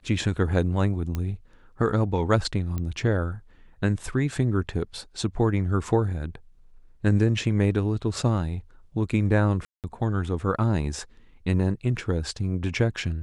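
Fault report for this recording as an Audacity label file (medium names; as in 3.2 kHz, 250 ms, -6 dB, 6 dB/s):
1.150000	1.150000	pop -16 dBFS
2.780000	2.780000	pop -18 dBFS
9.650000	9.840000	dropout 188 ms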